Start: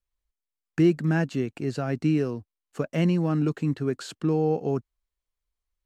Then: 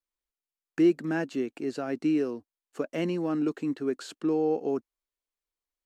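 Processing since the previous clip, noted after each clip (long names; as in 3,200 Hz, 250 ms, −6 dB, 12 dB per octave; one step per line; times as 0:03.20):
low shelf with overshoot 190 Hz −13 dB, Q 1.5
level −3.5 dB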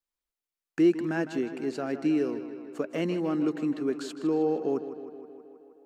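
tape delay 157 ms, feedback 74%, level −11 dB, low-pass 4,900 Hz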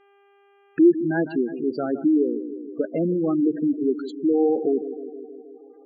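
hum with harmonics 400 Hz, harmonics 8, −64 dBFS −5 dB per octave
gate on every frequency bin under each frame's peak −15 dB strong
level +6.5 dB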